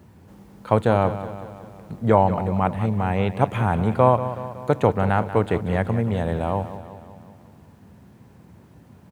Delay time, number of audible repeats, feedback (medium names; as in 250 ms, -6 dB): 186 ms, 5, 57%